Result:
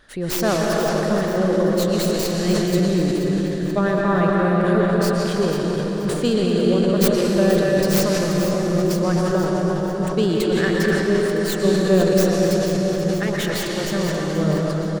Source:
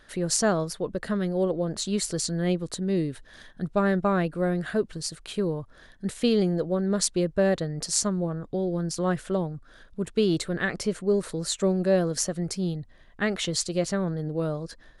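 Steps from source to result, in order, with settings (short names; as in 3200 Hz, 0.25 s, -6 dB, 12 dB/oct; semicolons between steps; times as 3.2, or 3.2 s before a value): tracing distortion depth 0.32 ms; 13.23–13.84 hard clip -26.5 dBFS, distortion -21 dB; feedback echo 0.481 s, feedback 42%, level -11.5 dB; reverb RT60 5.1 s, pre-delay 0.108 s, DRR -3.5 dB; sustainer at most 36 dB/s; gain +1.5 dB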